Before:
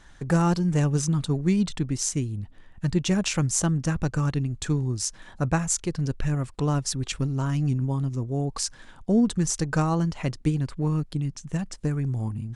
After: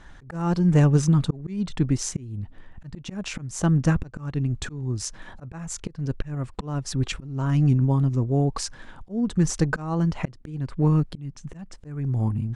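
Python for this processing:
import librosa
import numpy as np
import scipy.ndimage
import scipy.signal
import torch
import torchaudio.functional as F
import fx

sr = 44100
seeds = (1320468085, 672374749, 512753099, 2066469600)

y = fx.auto_swell(x, sr, attack_ms=384.0)
y = fx.high_shelf(y, sr, hz=3900.0, db=-11.5)
y = F.gain(torch.from_numpy(y), 5.5).numpy()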